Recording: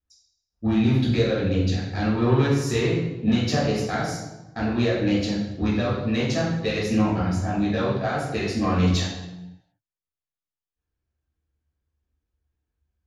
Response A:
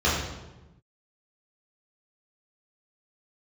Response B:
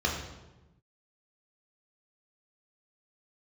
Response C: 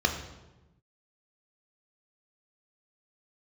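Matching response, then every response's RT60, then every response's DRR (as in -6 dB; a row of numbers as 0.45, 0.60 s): A; 1.1, 1.1, 1.1 s; -8.5, -1.5, 4.0 dB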